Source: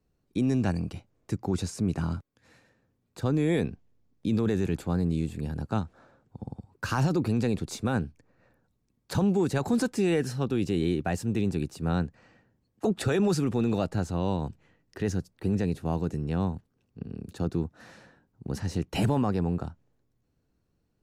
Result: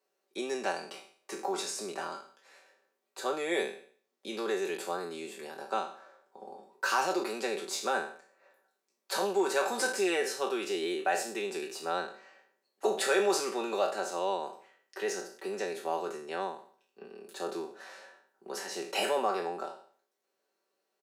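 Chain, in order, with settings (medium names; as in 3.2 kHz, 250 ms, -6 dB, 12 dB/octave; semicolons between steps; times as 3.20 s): spectral sustain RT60 0.50 s; high-pass 430 Hz 24 dB/octave; comb 5.2 ms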